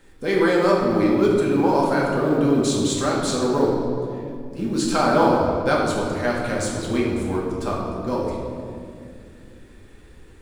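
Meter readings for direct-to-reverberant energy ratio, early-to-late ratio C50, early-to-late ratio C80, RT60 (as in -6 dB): -4.5 dB, 0.5 dB, 2.5 dB, 2.3 s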